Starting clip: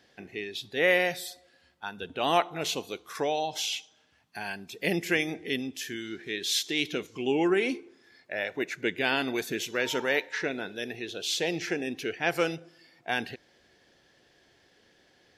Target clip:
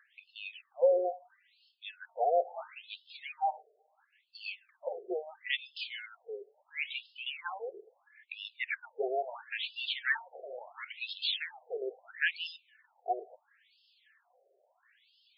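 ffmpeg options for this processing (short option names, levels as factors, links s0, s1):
-filter_complex "[0:a]aphaser=in_gain=1:out_gain=1:delay=4.8:decay=0.49:speed=0.25:type=triangular,asettb=1/sr,asplit=3[s0][s1][s2];[s0]atrim=end=10.284[s3];[s1]atrim=start=10.28:end=10.97,asetpts=PTS-STARTPTS,afade=t=in:d=0.004:c=qsin,afade=t=out:st=0.686:d=0.004:c=qsin,aeval=exprs='abs(val(0))':c=same[s4];[s2]atrim=start=10.966[s5];[s3][s4]acrossfade=d=0.004:c1=hsin:c2=qsin[s6];[s6][s5]acrossfade=d=0.004:c1=qsin:c2=hsin,afftfilt=real='re*between(b*sr/1024,510*pow(3800/510,0.5+0.5*sin(2*PI*0.74*pts/sr))/1.41,510*pow(3800/510,0.5+0.5*sin(2*PI*0.74*pts/sr))*1.41)':imag='im*between(b*sr/1024,510*pow(3800/510,0.5+0.5*sin(2*PI*0.74*pts/sr))/1.41,510*pow(3800/510,0.5+0.5*sin(2*PI*0.74*pts/sr))*1.41)':win_size=1024:overlap=0.75"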